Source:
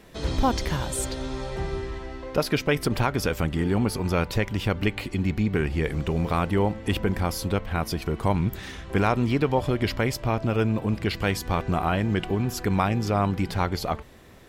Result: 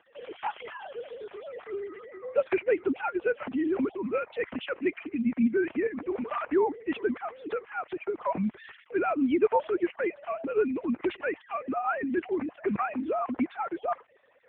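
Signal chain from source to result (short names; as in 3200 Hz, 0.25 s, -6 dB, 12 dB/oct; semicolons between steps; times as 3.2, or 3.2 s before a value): sine-wave speech; gain -4 dB; AMR-NB 6.7 kbps 8000 Hz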